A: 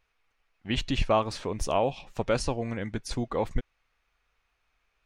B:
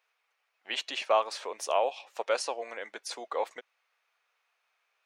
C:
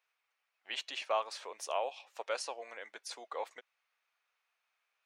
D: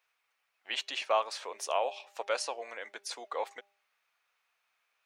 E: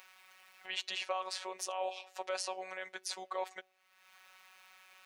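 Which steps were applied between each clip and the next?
high-pass filter 500 Hz 24 dB per octave
low-shelf EQ 490 Hz −7 dB; level −5.5 dB
hum removal 200.7 Hz, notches 4; level +4.5 dB
upward compression, threshold −44 dBFS; brickwall limiter −26.5 dBFS, peak gain reduction 10.5 dB; phases set to zero 187 Hz; level +2 dB

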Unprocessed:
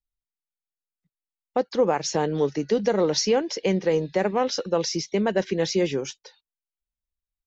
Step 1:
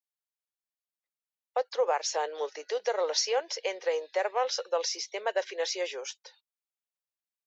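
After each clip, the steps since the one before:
Butterworth high-pass 500 Hz 36 dB per octave
level −3 dB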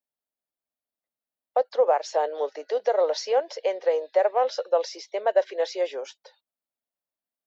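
graphic EQ with 15 bands 250 Hz +11 dB, 630 Hz +10 dB, 2,500 Hz −4 dB, 6,300 Hz −9 dB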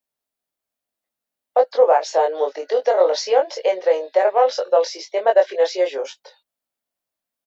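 double-tracking delay 22 ms −3 dB
level +5 dB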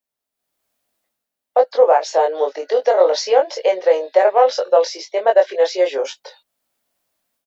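automatic gain control gain up to 13.5 dB
level −1 dB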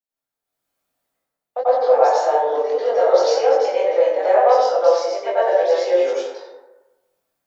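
dense smooth reverb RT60 1.1 s, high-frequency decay 0.4×, pre-delay 80 ms, DRR −10 dB
level −11.5 dB

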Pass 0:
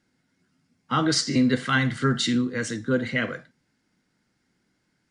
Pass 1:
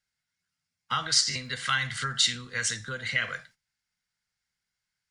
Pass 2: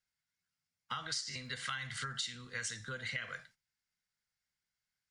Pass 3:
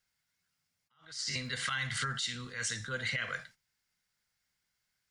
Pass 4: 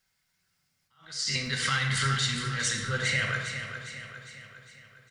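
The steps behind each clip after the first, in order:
noise gate −53 dBFS, range −15 dB; downward compressor, threshold −25 dBFS, peak gain reduction 8.5 dB; guitar amp tone stack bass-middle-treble 10-0-10; level +9 dB
downward compressor 6 to 1, threshold −30 dBFS, peak gain reduction 11.5 dB; level −6 dB
brickwall limiter −30.5 dBFS, peak gain reduction 8 dB; level that may rise only so fast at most 140 dB per second; level +7.5 dB
repeating echo 406 ms, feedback 53%, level −9 dB; convolution reverb RT60 1.3 s, pre-delay 5 ms, DRR 3 dB; level +5 dB

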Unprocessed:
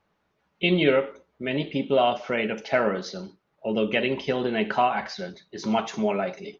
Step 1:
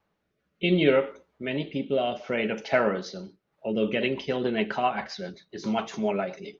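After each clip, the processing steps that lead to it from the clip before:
rotating-speaker cabinet horn 0.65 Hz, later 7.5 Hz, at 0:03.27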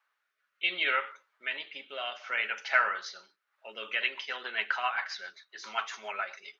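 high-pass with resonance 1,400 Hz, resonance Q 2.1
level −1.5 dB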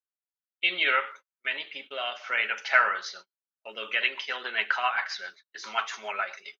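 noise gate −49 dBFS, range −36 dB
level +4 dB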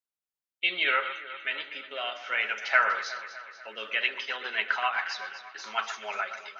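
delay that swaps between a low-pass and a high-pass 122 ms, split 1,800 Hz, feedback 74%, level −10 dB
level −1.5 dB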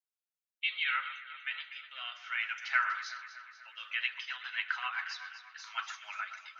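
high-pass filter 1,100 Hz 24 dB per octave
level −6 dB

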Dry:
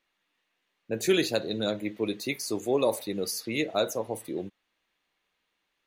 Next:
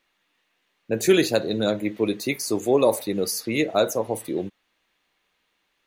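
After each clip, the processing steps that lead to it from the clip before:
dynamic equaliser 3,500 Hz, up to −4 dB, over −45 dBFS, Q 1.1
level +6.5 dB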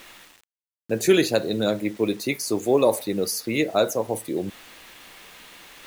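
reversed playback
upward compression, threshold −27 dBFS
reversed playback
bit reduction 8 bits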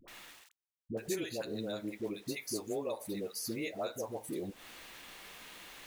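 downward compressor 4 to 1, threshold −31 dBFS, peak gain reduction 15.5 dB
all-pass dispersion highs, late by 80 ms, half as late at 580 Hz
level −5 dB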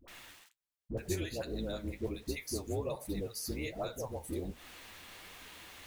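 sub-octave generator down 2 octaves, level +1 dB
flanger 1.3 Hz, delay 2.4 ms, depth 9.8 ms, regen +57%
level +3.5 dB

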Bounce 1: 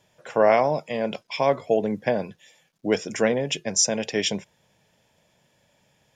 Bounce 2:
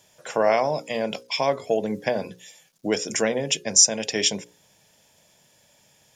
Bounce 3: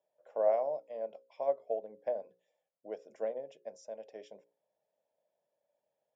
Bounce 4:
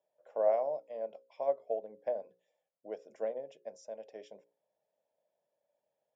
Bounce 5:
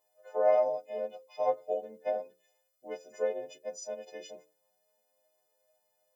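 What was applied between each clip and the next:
bass and treble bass −2 dB, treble +10 dB; mains-hum notches 60/120/180/240/300/360/420/480/540 Hz; in parallel at +1 dB: downward compressor, threshold −27 dBFS, peak gain reduction 18 dB; on the sum: level −4 dB
resonant band-pass 590 Hz, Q 3.7; expander for the loud parts 1.5 to 1, over −36 dBFS; level −4.5 dB
no processing that can be heard
every partial snapped to a pitch grid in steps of 3 semitones; flanger 0.34 Hz, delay 0.9 ms, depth 5.8 ms, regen +50%; level +8 dB

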